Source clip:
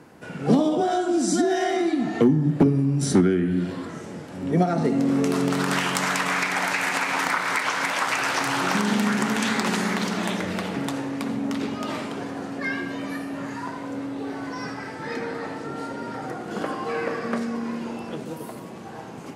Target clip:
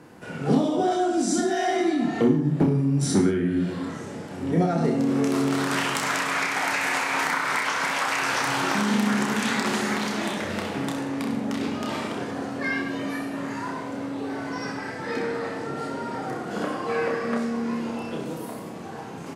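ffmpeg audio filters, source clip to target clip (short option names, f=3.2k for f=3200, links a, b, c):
-filter_complex "[0:a]asplit=2[a][b];[b]alimiter=limit=-17.5dB:level=0:latency=1:release=396,volume=0.5dB[c];[a][c]amix=inputs=2:normalize=0,aecho=1:1:30|63|99.3|139.2|183.2:0.631|0.398|0.251|0.158|0.1,volume=-7dB"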